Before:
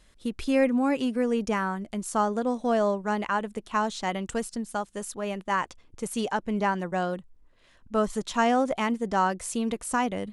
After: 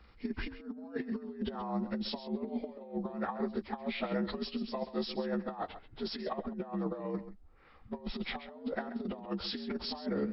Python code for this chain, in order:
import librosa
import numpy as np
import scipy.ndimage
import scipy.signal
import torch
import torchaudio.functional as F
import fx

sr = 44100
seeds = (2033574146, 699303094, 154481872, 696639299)

y = fx.partial_stretch(x, sr, pct=81)
y = fx.high_shelf(y, sr, hz=3200.0, db=-8.5)
y = fx.over_compress(y, sr, threshold_db=-33.0, ratio=-0.5)
y = y + 10.0 ** (-13.0 / 20.0) * np.pad(y, (int(133 * sr / 1000.0), 0))[:len(y)]
y = F.gain(torch.from_numpy(y), -3.0).numpy()